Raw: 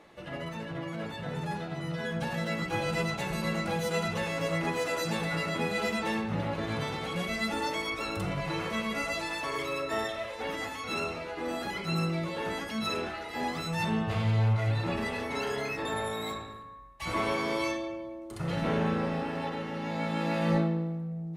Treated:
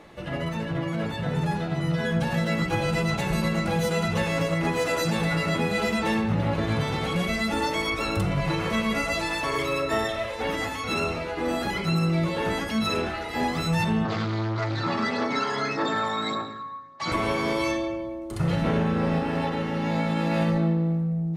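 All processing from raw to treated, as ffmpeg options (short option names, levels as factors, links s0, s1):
-filter_complex "[0:a]asettb=1/sr,asplit=3[s0][s1][s2];[s0]atrim=end=14.054[s3];[s1]atrim=start=14.05:end=17.12,asetpts=PTS-STARTPTS,afade=t=in:d=0.004:c=qsin,afade=t=out:st=3.066:d=0.004:c=qsin,aphaser=in_gain=1:out_gain=1:delay=1.1:decay=0.38:speed=1.7:type=triangular,asoftclip=type=hard:threshold=0.0531,highpass=f=160:w=0.5412,highpass=f=160:w=1.3066,equalizer=f=180:t=q:w=4:g=-7,equalizer=f=440:t=q:w=4:g=-4,equalizer=f=1300:t=q:w=4:g=7,equalizer=f=2700:t=q:w=4:g=-7,equalizer=f=4500:t=q:w=4:g=5,lowpass=f=6600:w=0.5412,lowpass=f=6600:w=1.3066[s4];[s2]atrim=start=17.116[s5];[s3][s4]acrossfade=d=0.004:c1=hsin:c2=qsin[s6];[s6][s5]acrossfade=d=0.004:c1=qsin:c2=hsin,lowshelf=f=170:g=7.5,alimiter=limit=0.0841:level=0:latency=1:release=148,volume=2"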